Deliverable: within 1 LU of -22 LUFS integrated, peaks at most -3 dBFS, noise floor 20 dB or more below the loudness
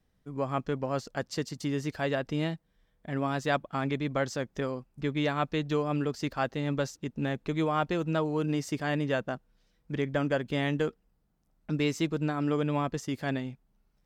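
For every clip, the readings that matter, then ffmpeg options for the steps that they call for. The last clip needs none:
loudness -31.5 LUFS; peak -14.5 dBFS; loudness target -22.0 LUFS
-> -af "volume=9.5dB"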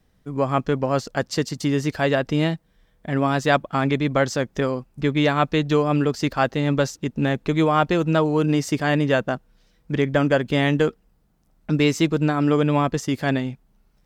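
loudness -22.0 LUFS; peak -5.0 dBFS; noise floor -62 dBFS

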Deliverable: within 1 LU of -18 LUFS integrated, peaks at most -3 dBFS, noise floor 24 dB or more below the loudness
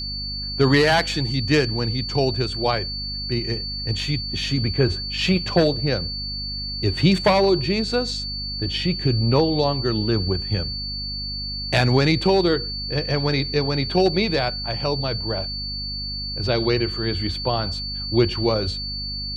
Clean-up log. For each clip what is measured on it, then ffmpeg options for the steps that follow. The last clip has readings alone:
hum 50 Hz; harmonics up to 250 Hz; hum level -31 dBFS; steady tone 4500 Hz; tone level -28 dBFS; loudness -22.0 LUFS; peak -4.5 dBFS; loudness target -18.0 LUFS
-> -af "bandreject=f=50:t=h:w=6,bandreject=f=100:t=h:w=6,bandreject=f=150:t=h:w=6,bandreject=f=200:t=h:w=6,bandreject=f=250:t=h:w=6"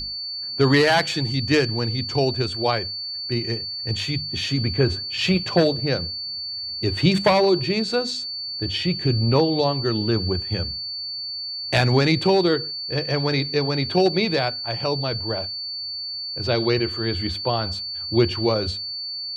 hum none; steady tone 4500 Hz; tone level -28 dBFS
-> -af "bandreject=f=4.5k:w=30"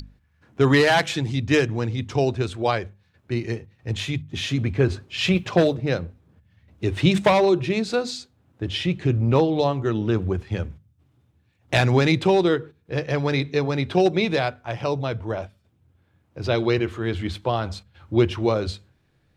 steady tone none; loudness -23.0 LUFS; peak -5.0 dBFS; loudness target -18.0 LUFS
-> -af "volume=5dB,alimiter=limit=-3dB:level=0:latency=1"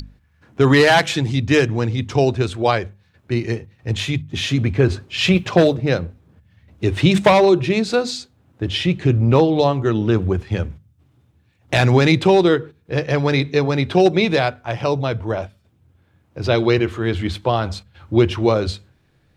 loudness -18.0 LUFS; peak -3.0 dBFS; noise floor -59 dBFS

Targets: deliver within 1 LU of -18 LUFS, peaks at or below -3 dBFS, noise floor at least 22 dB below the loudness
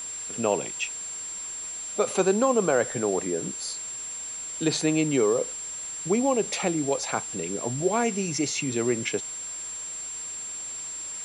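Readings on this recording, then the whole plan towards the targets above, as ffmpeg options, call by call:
steady tone 7400 Hz; tone level -33 dBFS; noise floor -36 dBFS; noise floor target -49 dBFS; loudness -27.0 LUFS; peak -10.5 dBFS; loudness target -18.0 LUFS
-> -af "bandreject=f=7.4k:w=30"
-af "afftdn=nr=13:nf=-36"
-af "volume=9dB,alimiter=limit=-3dB:level=0:latency=1"

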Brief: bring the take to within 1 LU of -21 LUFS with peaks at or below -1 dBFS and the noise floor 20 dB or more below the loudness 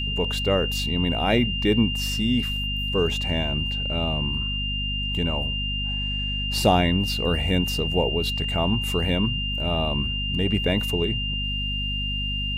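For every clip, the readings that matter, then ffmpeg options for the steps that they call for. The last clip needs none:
hum 50 Hz; harmonics up to 250 Hz; hum level -27 dBFS; steady tone 2800 Hz; tone level -27 dBFS; loudness -23.5 LUFS; peak -6.0 dBFS; loudness target -21.0 LUFS
-> -af "bandreject=f=50:t=h:w=6,bandreject=f=100:t=h:w=6,bandreject=f=150:t=h:w=6,bandreject=f=200:t=h:w=6,bandreject=f=250:t=h:w=6"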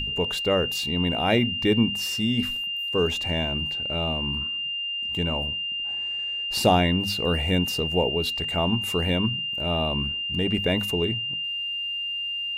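hum none; steady tone 2800 Hz; tone level -27 dBFS
-> -af "bandreject=f=2.8k:w=30"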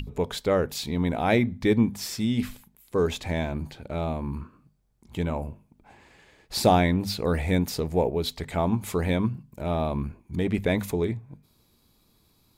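steady tone none; loudness -26.5 LUFS; peak -7.0 dBFS; loudness target -21.0 LUFS
-> -af "volume=5.5dB"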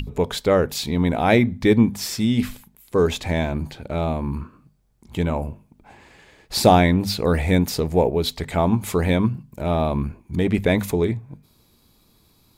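loudness -21.0 LUFS; peak -1.5 dBFS; noise floor -59 dBFS

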